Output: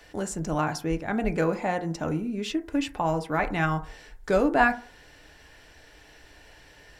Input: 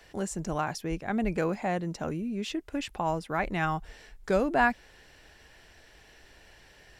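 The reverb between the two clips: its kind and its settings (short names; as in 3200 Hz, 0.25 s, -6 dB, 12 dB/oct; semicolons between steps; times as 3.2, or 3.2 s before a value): FDN reverb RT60 0.44 s, low-frequency decay 0.8×, high-frequency decay 0.3×, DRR 6.5 dB; gain +2.5 dB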